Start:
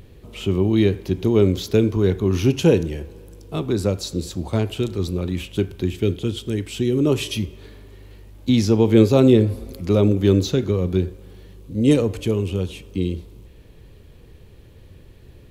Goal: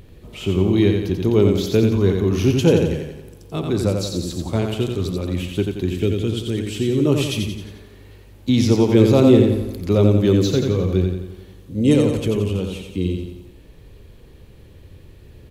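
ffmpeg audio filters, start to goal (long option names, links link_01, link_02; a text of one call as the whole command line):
ffmpeg -i in.wav -af "aecho=1:1:88|176|264|352|440|528:0.596|0.298|0.149|0.0745|0.0372|0.0186" out.wav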